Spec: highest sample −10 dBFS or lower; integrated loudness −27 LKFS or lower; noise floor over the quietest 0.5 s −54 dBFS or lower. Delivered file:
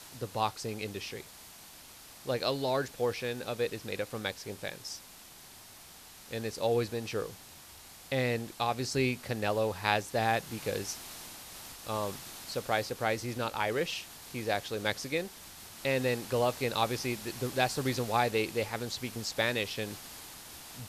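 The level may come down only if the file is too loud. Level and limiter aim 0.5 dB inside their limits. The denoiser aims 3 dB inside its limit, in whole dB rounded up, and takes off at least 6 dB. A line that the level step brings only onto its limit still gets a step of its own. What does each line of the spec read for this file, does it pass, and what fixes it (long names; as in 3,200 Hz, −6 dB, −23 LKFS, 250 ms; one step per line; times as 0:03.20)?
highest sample −9.5 dBFS: out of spec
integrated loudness −33.0 LKFS: in spec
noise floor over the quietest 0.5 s −52 dBFS: out of spec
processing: broadband denoise 6 dB, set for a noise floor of −52 dBFS
brickwall limiter −10.5 dBFS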